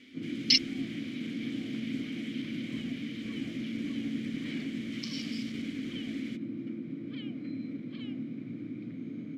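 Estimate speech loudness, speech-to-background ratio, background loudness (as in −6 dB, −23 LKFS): −35.5 LKFS, 2.5 dB, −38.0 LKFS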